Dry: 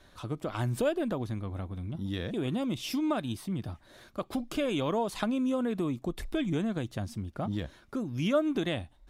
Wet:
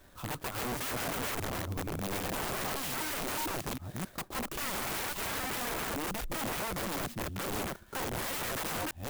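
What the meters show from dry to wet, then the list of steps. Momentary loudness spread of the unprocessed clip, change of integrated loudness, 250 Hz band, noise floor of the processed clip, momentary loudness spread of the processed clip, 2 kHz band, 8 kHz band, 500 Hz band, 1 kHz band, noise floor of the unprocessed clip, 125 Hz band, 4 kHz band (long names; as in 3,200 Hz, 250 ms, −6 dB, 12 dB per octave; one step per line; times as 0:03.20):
9 LU, −2.5 dB, −9.5 dB, −56 dBFS, 4 LU, +5.0 dB, +11.5 dB, −6.5 dB, +2.5 dB, −59 dBFS, −6.5 dB, +2.5 dB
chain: delay that plays each chunk backwards 270 ms, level −4 dB
wrap-around overflow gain 30 dB
converter with an unsteady clock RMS 0.052 ms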